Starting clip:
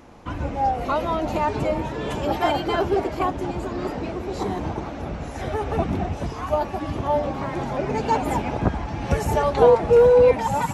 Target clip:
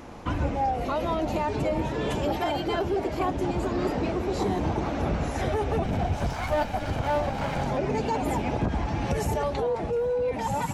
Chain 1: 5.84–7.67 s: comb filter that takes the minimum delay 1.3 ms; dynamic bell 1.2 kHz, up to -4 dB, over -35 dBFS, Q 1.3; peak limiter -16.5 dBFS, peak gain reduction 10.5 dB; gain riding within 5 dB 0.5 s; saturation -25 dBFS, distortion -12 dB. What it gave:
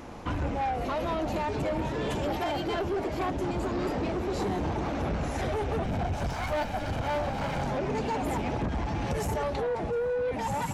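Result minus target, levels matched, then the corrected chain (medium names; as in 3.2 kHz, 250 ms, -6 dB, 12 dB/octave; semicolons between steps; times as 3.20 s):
saturation: distortion +13 dB
5.84–7.67 s: comb filter that takes the minimum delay 1.3 ms; dynamic bell 1.2 kHz, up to -4 dB, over -35 dBFS, Q 1.3; peak limiter -16.5 dBFS, peak gain reduction 10.5 dB; gain riding within 5 dB 0.5 s; saturation -15 dBFS, distortion -25 dB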